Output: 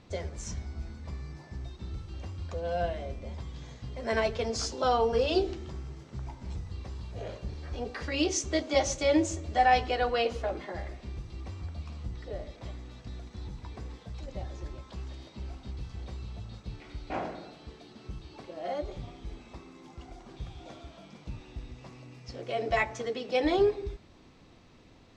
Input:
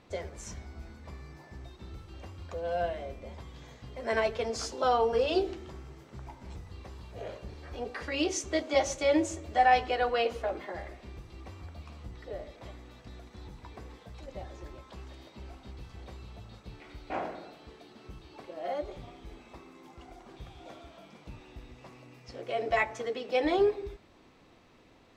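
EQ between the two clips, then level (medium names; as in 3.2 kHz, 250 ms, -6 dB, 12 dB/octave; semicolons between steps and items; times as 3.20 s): distance through air 98 m; tone controls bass +7 dB, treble +12 dB; 0.0 dB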